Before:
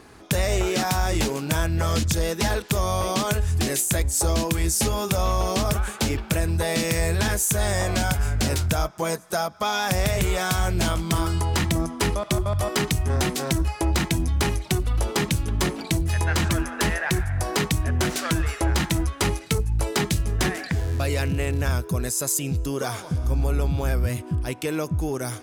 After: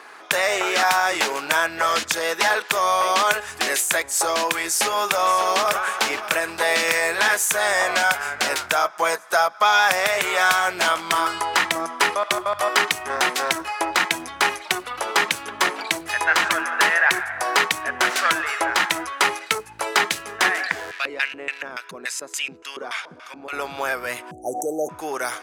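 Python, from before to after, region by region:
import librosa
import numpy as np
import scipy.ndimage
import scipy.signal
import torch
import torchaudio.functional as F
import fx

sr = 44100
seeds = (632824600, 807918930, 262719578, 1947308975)

y = fx.chain(x, sr, fx.quant_float(bits=8),
    fx.echo_single(ms=573, db=-13.5), at=(4.62, 7.37))
y = fx.chain(y, sr, fx.high_shelf(hz=2000.0, db=8.0),
    fx.filter_lfo_bandpass(shape='square', hz=3.5, low_hz=250.0, high_hz=2400.0, q=1.4), at=(20.91, 23.53))
y = fx.chain(y, sr, fx.brickwall_bandstop(low_hz=860.0, high_hz=5700.0),
    fx.high_shelf(hz=6100.0, db=-7.0),
    fx.env_flatten(amount_pct=70), at=(24.31, 24.89))
y = scipy.signal.sosfilt(scipy.signal.butter(2, 490.0, 'highpass', fs=sr, output='sos'), y)
y = fx.peak_eq(y, sr, hz=1500.0, db=11.5, octaves=2.5)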